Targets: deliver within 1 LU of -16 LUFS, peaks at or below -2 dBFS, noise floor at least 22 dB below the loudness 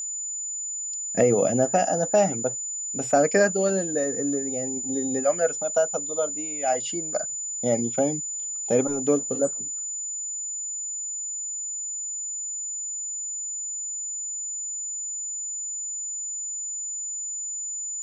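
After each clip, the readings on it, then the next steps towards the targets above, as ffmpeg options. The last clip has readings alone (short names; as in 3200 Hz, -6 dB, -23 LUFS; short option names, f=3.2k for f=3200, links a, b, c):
steady tone 7000 Hz; tone level -29 dBFS; loudness -25.5 LUFS; peak -8.0 dBFS; loudness target -16.0 LUFS
-> -af "bandreject=f=7k:w=30"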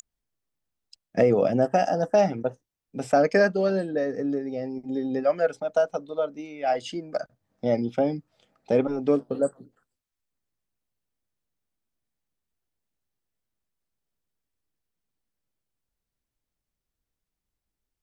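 steady tone none; loudness -25.5 LUFS; peak -9.0 dBFS; loudness target -16.0 LUFS
-> -af "volume=9.5dB,alimiter=limit=-2dB:level=0:latency=1"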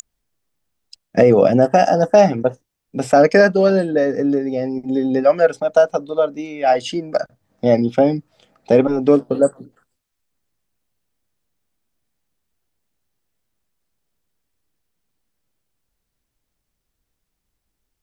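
loudness -16.5 LUFS; peak -2.0 dBFS; noise floor -77 dBFS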